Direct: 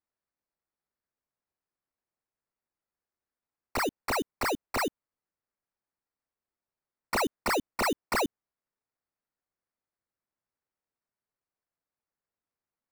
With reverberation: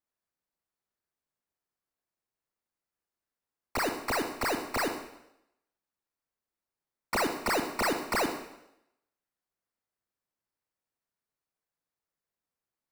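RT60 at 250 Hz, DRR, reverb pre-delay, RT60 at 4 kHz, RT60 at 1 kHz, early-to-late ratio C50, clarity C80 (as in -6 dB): 0.80 s, 5.5 dB, 29 ms, 0.80 s, 0.80 s, 7.0 dB, 10.0 dB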